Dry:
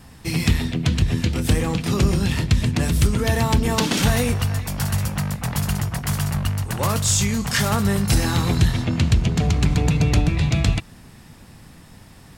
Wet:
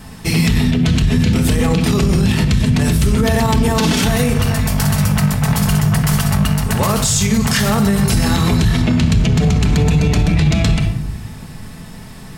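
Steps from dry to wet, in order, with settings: on a send at -4 dB: reverberation RT60 0.75 s, pre-delay 5 ms; on the sum: loudness maximiser +13.5 dB; trim -5 dB

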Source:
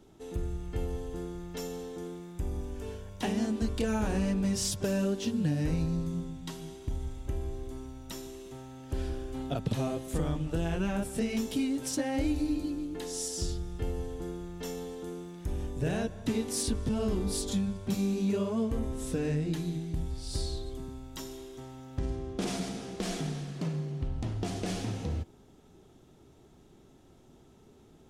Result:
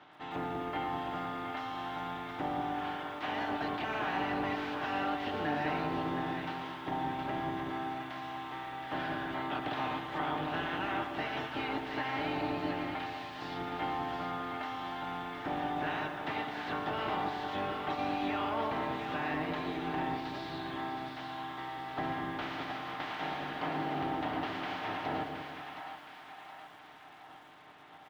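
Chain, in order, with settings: spectral peaks clipped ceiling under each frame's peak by 28 dB; comb 6.6 ms, depth 42%; in parallel at -1 dB: compression, threshold -37 dBFS, peak gain reduction 13.5 dB; on the sum: saturation -26.5 dBFS, distortion -11 dB; cabinet simulation 110–2800 Hz, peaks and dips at 130 Hz -5 dB, 200 Hz -5 dB, 290 Hz +3 dB, 490 Hz -8 dB, 780 Hz +6 dB, 2.5 kHz -5 dB; on a send: two-band feedback delay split 740 Hz, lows 191 ms, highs 719 ms, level -6.5 dB; on the sum: bit-crushed delay 116 ms, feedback 35%, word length 9-bit, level -11.5 dB; trim -2.5 dB

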